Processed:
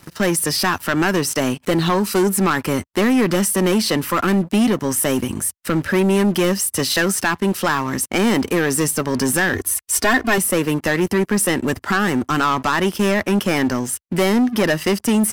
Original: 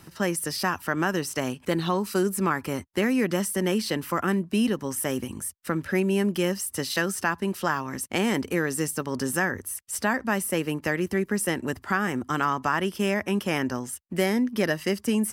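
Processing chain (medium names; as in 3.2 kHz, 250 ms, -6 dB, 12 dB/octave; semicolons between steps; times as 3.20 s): waveshaping leveller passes 3; 9.53–10.38 s: comb 2.8 ms, depth 87%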